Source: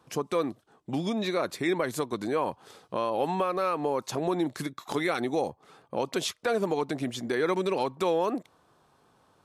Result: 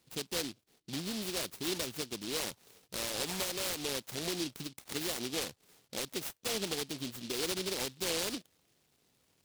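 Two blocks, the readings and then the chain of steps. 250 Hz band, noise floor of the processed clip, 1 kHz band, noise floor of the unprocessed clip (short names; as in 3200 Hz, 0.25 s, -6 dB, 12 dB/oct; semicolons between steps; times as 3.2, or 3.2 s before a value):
-10.0 dB, -74 dBFS, -15.5 dB, -66 dBFS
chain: noise-modulated delay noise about 3800 Hz, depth 0.31 ms; gain -8.5 dB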